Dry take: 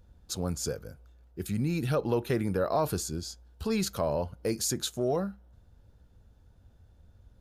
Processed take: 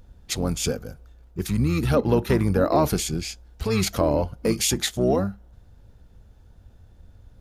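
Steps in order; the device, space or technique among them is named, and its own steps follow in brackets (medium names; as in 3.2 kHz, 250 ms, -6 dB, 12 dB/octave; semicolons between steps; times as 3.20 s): octave pedal (harmony voices -12 st -5 dB); trim +6.5 dB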